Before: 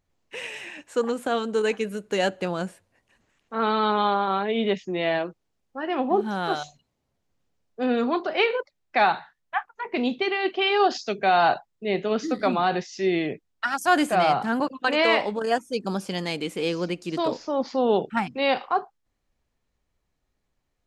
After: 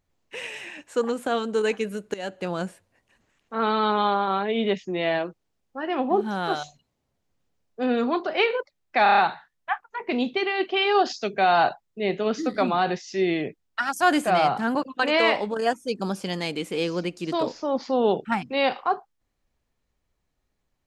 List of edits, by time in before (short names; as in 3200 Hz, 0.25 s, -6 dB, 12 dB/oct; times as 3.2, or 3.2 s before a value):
2.14–2.55 fade in, from -17.5 dB
9.03 stutter 0.03 s, 6 plays